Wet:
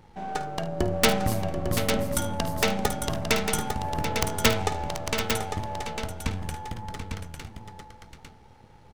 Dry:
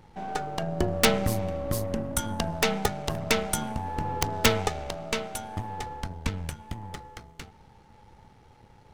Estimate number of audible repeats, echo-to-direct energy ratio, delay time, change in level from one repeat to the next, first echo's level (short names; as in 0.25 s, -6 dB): 3, -4.0 dB, 52 ms, no steady repeat, -13.5 dB